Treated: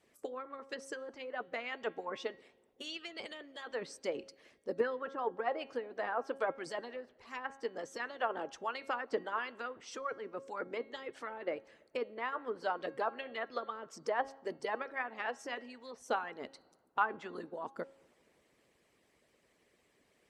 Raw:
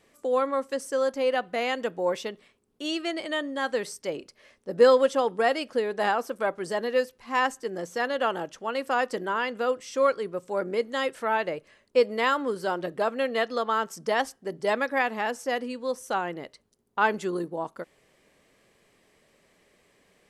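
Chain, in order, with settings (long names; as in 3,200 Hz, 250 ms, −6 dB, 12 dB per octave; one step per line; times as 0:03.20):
high-pass filter 43 Hz
hollow resonant body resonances 240/440 Hz, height 6 dB, ringing for 90 ms
treble cut that deepens with the level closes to 1,400 Hz, closed at −20 dBFS
on a send at −23 dB: convolution reverb RT60 2.2 s, pre-delay 48 ms
on the sum: harmonic and percussive parts rebalanced harmonic −18 dB
hum removal 272 Hz, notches 17
level −3.5 dB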